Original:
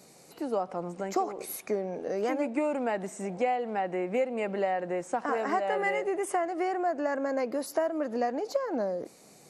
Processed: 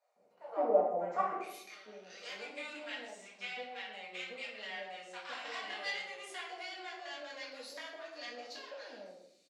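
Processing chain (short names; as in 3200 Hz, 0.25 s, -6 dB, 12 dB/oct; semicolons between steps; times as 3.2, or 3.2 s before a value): power-law curve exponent 1.4; bands offset in time highs, lows 0.16 s, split 790 Hz; band-pass sweep 630 Hz -> 3900 Hz, 1.04–1.59; reverb RT60 0.70 s, pre-delay 4 ms, DRR -6 dB; gain +3 dB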